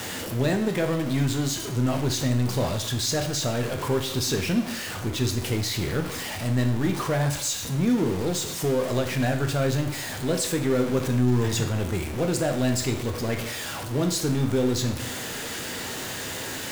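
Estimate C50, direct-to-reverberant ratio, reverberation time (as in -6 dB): 9.0 dB, 4.5 dB, 0.65 s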